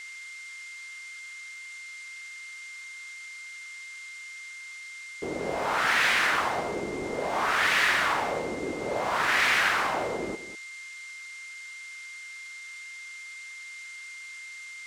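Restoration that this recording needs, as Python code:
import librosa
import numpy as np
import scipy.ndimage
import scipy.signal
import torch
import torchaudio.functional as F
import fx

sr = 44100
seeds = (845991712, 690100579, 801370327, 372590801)

y = fx.notch(x, sr, hz=2100.0, q=30.0)
y = fx.noise_reduce(y, sr, print_start_s=10.87, print_end_s=11.37, reduce_db=30.0)
y = fx.fix_echo_inverse(y, sr, delay_ms=201, level_db=-13.5)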